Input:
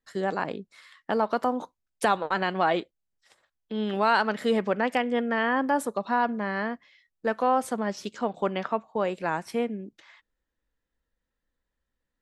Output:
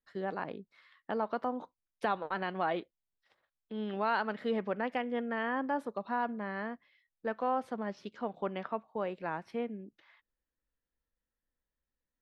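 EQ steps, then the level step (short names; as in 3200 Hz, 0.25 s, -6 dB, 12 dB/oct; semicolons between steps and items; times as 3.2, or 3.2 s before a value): air absorption 68 m; bell 7600 Hz -14 dB 0.84 oct; -8.0 dB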